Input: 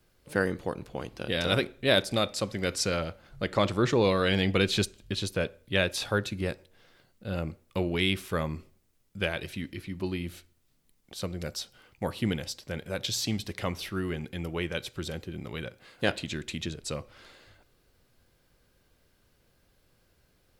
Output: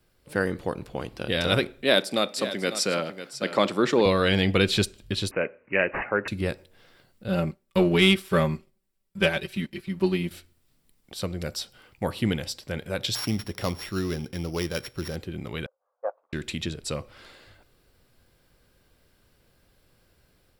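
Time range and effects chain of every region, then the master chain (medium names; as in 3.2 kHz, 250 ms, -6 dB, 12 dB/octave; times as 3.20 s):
1.82–4.06 s: high-pass 180 Hz 24 dB/octave + delay 547 ms -12.5 dB
5.31–6.28 s: high-pass 250 Hz + careless resampling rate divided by 8×, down none, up filtered
7.28–10.31 s: comb 5.2 ms, depth 84% + waveshaping leveller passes 1 + upward expansion, over -43 dBFS
13.15–15.16 s: sorted samples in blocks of 8 samples + treble shelf 4.7 kHz -6 dB
15.66–16.33 s: CVSD coder 32 kbps + Chebyshev band-pass 510–1200 Hz, order 3 + upward expansion 2.5:1, over -41 dBFS
whole clip: band-stop 6.4 kHz, Q 11; level rider gain up to 3.5 dB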